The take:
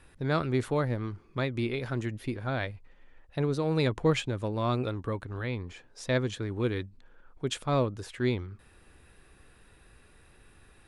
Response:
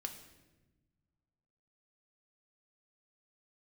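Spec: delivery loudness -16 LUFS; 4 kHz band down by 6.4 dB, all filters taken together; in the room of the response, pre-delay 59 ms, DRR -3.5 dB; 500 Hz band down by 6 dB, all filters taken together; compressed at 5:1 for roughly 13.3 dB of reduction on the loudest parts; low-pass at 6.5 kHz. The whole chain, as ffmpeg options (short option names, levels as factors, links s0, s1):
-filter_complex "[0:a]lowpass=6500,equalizer=f=500:t=o:g=-7.5,equalizer=f=4000:t=o:g=-7.5,acompressor=threshold=0.0112:ratio=5,asplit=2[s0][s1];[1:a]atrim=start_sample=2205,adelay=59[s2];[s1][s2]afir=irnorm=-1:irlink=0,volume=1.88[s3];[s0][s3]amix=inputs=2:normalize=0,volume=13.3"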